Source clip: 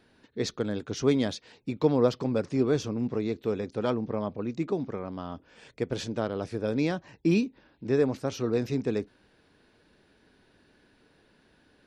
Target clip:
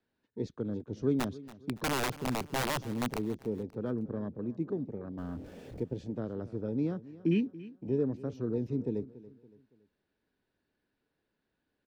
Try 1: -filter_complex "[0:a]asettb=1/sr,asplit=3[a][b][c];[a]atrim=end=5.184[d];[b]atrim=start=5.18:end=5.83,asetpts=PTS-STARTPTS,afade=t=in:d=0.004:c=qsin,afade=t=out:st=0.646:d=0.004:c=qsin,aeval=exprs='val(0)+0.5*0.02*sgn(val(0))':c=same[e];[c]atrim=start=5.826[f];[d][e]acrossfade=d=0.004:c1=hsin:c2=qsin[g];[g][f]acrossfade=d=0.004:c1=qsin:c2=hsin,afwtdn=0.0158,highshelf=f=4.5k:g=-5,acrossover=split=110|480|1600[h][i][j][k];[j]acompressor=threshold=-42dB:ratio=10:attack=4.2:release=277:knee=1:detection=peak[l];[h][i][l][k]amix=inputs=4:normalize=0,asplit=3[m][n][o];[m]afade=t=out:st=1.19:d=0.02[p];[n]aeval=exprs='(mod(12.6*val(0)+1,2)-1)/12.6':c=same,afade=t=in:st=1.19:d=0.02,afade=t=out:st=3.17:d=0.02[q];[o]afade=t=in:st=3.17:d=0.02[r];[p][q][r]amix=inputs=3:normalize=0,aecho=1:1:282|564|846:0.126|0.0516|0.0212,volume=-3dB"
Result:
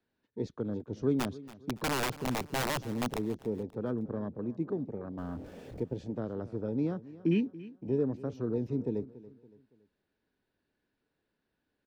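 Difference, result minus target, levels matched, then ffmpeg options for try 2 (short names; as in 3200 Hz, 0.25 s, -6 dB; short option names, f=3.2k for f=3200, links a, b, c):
compressor: peak gain reduction -6.5 dB
-filter_complex "[0:a]asettb=1/sr,asplit=3[a][b][c];[a]atrim=end=5.184[d];[b]atrim=start=5.18:end=5.83,asetpts=PTS-STARTPTS,afade=t=in:d=0.004:c=qsin,afade=t=out:st=0.646:d=0.004:c=qsin,aeval=exprs='val(0)+0.5*0.02*sgn(val(0))':c=same[e];[c]atrim=start=5.826[f];[d][e]acrossfade=d=0.004:c1=hsin:c2=qsin[g];[g][f]acrossfade=d=0.004:c1=qsin:c2=hsin,afwtdn=0.0158,highshelf=f=4.5k:g=-5,acrossover=split=110|480|1600[h][i][j][k];[j]acompressor=threshold=-49.5dB:ratio=10:attack=4.2:release=277:knee=1:detection=peak[l];[h][i][l][k]amix=inputs=4:normalize=0,asplit=3[m][n][o];[m]afade=t=out:st=1.19:d=0.02[p];[n]aeval=exprs='(mod(12.6*val(0)+1,2)-1)/12.6':c=same,afade=t=in:st=1.19:d=0.02,afade=t=out:st=3.17:d=0.02[q];[o]afade=t=in:st=3.17:d=0.02[r];[p][q][r]amix=inputs=3:normalize=0,aecho=1:1:282|564|846:0.126|0.0516|0.0212,volume=-3dB"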